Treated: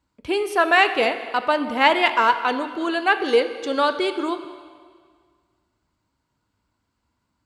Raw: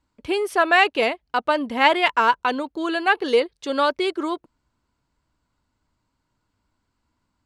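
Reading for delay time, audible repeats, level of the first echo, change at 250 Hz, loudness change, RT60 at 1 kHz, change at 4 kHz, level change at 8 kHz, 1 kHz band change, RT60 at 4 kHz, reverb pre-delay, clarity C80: no echo, no echo, no echo, +0.5 dB, +0.5 dB, 1.8 s, +0.5 dB, +0.5 dB, +0.5 dB, 1.7 s, 7 ms, 11.5 dB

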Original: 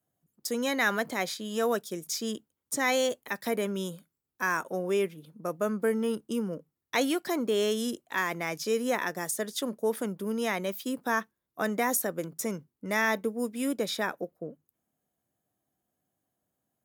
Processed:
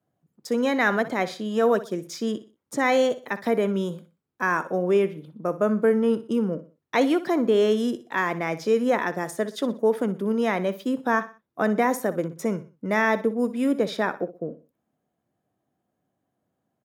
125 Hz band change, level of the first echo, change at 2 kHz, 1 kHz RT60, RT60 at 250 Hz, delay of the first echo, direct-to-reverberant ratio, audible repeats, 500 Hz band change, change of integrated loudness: +7.5 dB, -15.0 dB, +3.5 dB, no reverb, no reverb, 61 ms, no reverb, 3, +7.0 dB, +6.0 dB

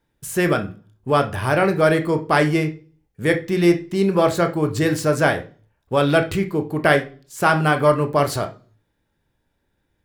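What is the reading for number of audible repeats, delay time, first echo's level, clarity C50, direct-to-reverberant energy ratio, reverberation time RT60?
no echo, no echo, no echo, 13.5 dB, 6.0 dB, 0.40 s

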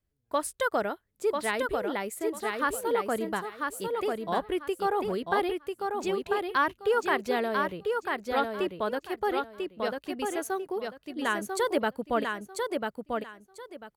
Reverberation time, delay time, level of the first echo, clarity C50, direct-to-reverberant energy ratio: no reverb, 994 ms, -4.0 dB, no reverb, no reverb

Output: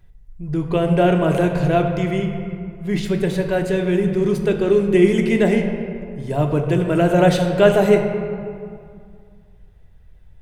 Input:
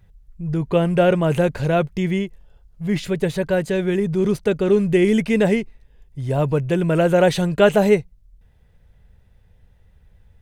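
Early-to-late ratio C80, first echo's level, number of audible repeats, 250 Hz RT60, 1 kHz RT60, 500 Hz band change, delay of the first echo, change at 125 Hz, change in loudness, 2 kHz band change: 6.5 dB, no echo, no echo, 2.5 s, 2.3 s, +1.0 dB, no echo, +1.5 dB, +1.0 dB, +0.5 dB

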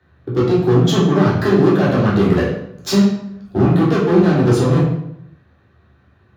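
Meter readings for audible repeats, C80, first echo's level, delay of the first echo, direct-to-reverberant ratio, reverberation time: no echo, 6.0 dB, no echo, no echo, -7.0 dB, 0.75 s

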